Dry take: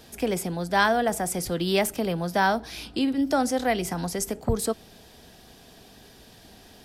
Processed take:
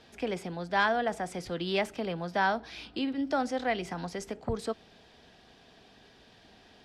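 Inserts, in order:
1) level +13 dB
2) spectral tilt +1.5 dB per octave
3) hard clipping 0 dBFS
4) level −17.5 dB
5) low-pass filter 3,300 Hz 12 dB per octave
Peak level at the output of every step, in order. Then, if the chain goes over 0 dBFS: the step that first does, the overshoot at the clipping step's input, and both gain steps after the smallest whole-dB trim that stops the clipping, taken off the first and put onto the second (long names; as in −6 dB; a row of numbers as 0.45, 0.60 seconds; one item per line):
+4.0, +4.0, 0.0, −17.5, −17.0 dBFS
step 1, 4.0 dB
step 1 +9 dB, step 4 −13.5 dB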